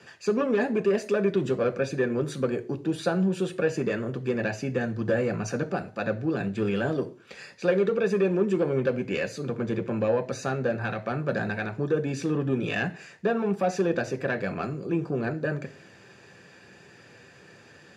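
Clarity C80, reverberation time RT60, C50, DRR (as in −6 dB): 21.5 dB, 0.40 s, 17.5 dB, 6.0 dB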